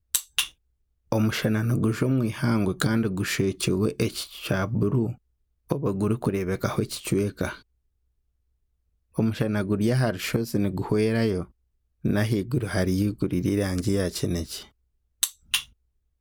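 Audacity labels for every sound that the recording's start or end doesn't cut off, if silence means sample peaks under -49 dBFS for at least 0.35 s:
1.120000	5.160000	sound
5.690000	7.610000	sound
9.150000	11.500000	sound
12.040000	14.700000	sound
15.220000	15.700000	sound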